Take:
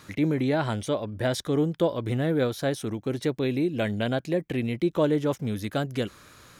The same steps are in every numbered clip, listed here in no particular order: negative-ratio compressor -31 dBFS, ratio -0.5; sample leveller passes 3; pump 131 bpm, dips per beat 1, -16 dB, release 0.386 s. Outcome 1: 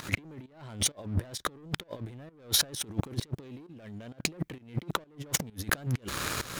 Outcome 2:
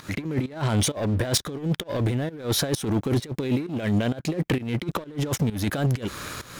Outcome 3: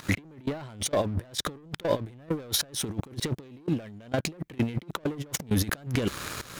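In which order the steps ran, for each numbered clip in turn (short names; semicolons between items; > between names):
sample leveller > negative-ratio compressor > pump; negative-ratio compressor > sample leveller > pump; sample leveller > pump > negative-ratio compressor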